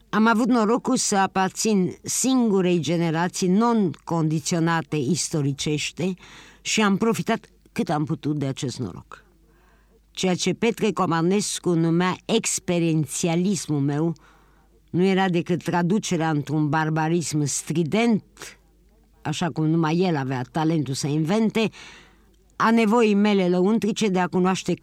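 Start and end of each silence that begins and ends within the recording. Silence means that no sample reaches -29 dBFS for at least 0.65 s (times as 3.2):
9.14–10.17
14.13–14.94
18.47–19.25
21.68–22.6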